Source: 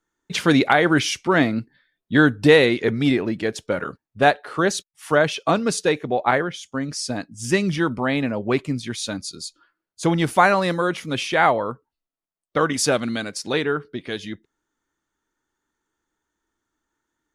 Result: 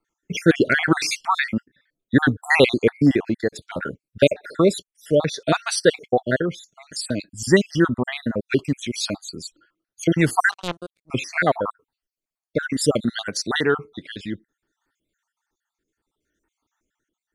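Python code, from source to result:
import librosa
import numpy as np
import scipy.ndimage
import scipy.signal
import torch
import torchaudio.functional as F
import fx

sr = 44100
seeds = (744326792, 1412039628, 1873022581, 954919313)

y = fx.spec_dropout(x, sr, seeds[0], share_pct=56)
y = fx.power_curve(y, sr, exponent=3.0, at=(10.51, 11.1))
y = fx.rotary(y, sr, hz=0.65)
y = F.gain(torch.from_numpy(y), 6.0).numpy()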